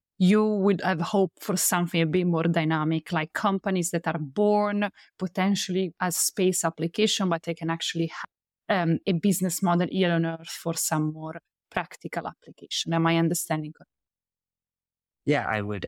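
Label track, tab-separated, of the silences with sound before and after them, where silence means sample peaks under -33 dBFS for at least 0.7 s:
13.690000	15.270000	silence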